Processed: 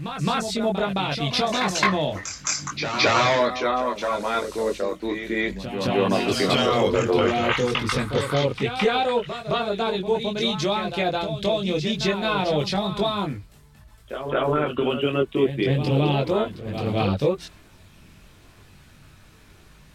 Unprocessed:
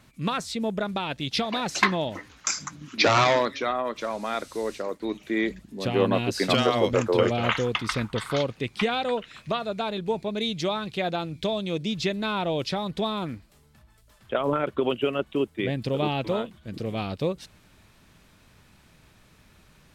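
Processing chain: chorus voices 6, 0.49 Hz, delay 21 ms, depth 1.5 ms; in parallel at +2 dB: limiter -20.5 dBFS, peak gain reduction 10.5 dB; on the sum: de-hum 57.89 Hz, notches 3; reverse echo 0.216 s -8.5 dB

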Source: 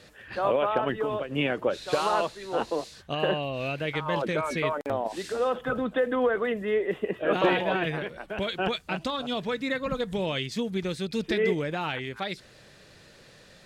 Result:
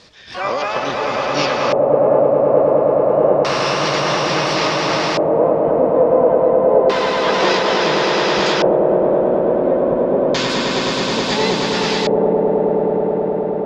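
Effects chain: harmoniser +5 st -7 dB, +12 st -4 dB; swelling echo 0.106 s, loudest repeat 8, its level -5.5 dB; LFO low-pass square 0.29 Hz 600–5100 Hz; gain +1.5 dB

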